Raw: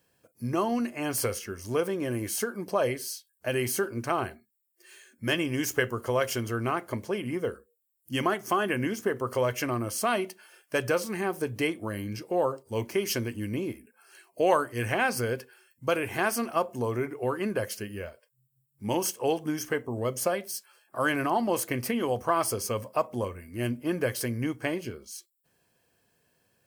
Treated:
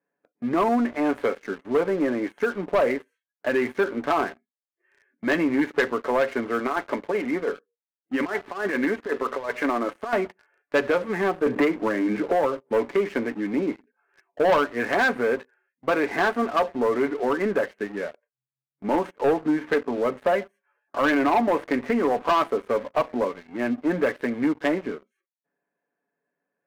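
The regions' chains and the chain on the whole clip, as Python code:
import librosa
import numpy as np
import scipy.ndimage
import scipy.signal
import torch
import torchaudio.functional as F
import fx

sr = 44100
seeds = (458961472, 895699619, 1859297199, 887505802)

y = fx.chain(x, sr, fx.peak_eq(hz=100.0, db=-11.0, octaves=2.3),
    fx.over_compress(threshold_db=-31.0, ratio=-0.5), at=(6.59, 10.13))
y = fx.chain(y, sr, fx.hum_notches(base_hz=50, count=4),
    fx.band_squash(depth_pct=100), at=(11.46, 12.89))
y = scipy.signal.sosfilt(scipy.signal.ellip(3, 1.0, 40, [200.0, 2000.0], 'bandpass', fs=sr, output='sos'), y)
y = y + 0.49 * np.pad(y, (int(7.0 * sr / 1000.0), 0))[:len(y)]
y = fx.leveller(y, sr, passes=3)
y = y * librosa.db_to_amplitude(-3.0)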